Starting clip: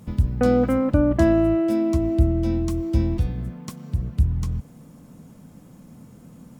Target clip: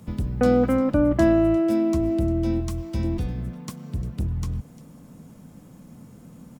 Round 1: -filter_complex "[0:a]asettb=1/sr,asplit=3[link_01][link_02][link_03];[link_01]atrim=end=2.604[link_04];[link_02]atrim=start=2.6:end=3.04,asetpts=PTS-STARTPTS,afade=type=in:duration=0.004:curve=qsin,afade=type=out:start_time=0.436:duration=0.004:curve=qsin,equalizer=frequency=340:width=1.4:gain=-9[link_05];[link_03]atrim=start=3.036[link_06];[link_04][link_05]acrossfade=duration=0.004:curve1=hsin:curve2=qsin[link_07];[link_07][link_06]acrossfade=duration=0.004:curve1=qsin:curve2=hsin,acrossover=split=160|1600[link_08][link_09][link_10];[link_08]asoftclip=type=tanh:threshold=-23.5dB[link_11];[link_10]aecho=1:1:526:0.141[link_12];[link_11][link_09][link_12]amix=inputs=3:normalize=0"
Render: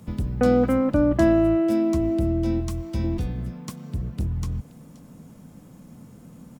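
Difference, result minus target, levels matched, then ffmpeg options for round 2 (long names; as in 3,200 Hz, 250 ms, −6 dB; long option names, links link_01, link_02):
echo 176 ms late
-filter_complex "[0:a]asettb=1/sr,asplit=3[link_01][link_02][link_03];[link_01]atrim=end=2.604[link_04];[link_02]atrim=start=2.6:end=3.04,asetpts=PTS-STARTPTS,afade=type=in:duration=0.004:curve=qsin,afade=type=out:start_time=0.436:duration=0.004:curve=qsin,equalizer=frequency=340:width=1.4:gain=-9[link_05];[link_03]atrim=start=3.036[link_06];[link_04][link_05]acrossfade=duration=0.004:curve1=hsin:curve2=qsin[link_07];[link_07][link_06]acrossfade=duration=0.004:curve1=qsin:curve2=hsin,acrossover=split=160|1600[link_08][link_09][link_10];[link_08]asoftclip=type=tanh:threshold=-23.5dB[link_11];[link_10]aecho=1:1:350:0.141[link_12];[link_11][link_09][link_12]amix=inputs=3:normalize=0"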